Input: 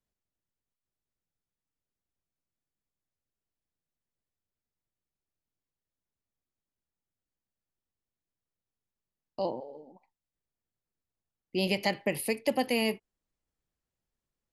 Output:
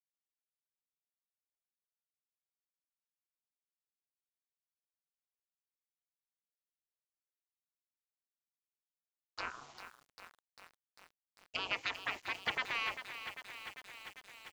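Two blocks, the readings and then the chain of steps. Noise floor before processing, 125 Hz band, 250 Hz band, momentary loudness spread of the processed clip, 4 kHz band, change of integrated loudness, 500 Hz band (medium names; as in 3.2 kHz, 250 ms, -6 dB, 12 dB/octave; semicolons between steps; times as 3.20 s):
under -85 dBFS, -18.5 dB, -24.0 dB, 18 LU, -4.0 dB, -9.0 dB, -20.0 dB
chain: low-pass that closes with the level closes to 1 kHz, closed at -30 dBFS; Chebyshev shaper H 2 -11 dB, 6 -15 dB, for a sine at -15.5 dBFS; dynamic bell 2.8 kHz, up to +3 dB, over -45 dBFS, Q 0.96; spectral gate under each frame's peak -15 dB weak; word length cut 10-bit, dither none; tilt EQ +2.5 dB/octave; resampled via 16 kHz; bit-crushed delay 397 ms, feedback 80%, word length 9-bit, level -9.5 dB; trim +1 dB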